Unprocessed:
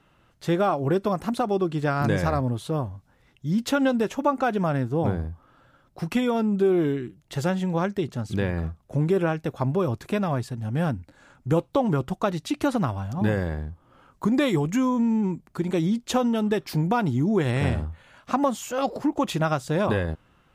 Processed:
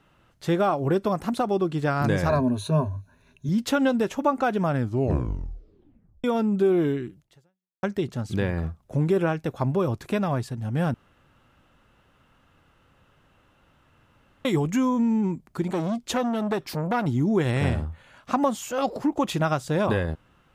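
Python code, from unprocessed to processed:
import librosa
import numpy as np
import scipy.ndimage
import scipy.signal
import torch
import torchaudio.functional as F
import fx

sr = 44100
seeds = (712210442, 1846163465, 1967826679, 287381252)

y = fx.ripple_eq(x, sr, per_octave=1.5, db=15, at=(2.29, 3.49))
y = fx.transformer_sat(y, sr, knee_hz=860.0, at=(15.68, 17.06))
y = fx.edit(y, sr, fx.tape_stop(start_s=4.73, length_s=1.51),
    fx.fade_out_span(start_s=7.2, length_s=0.63, curve='exp'),
    fx.room_tone_fill(start_s=10.94, length_s=3.51), tone=tone)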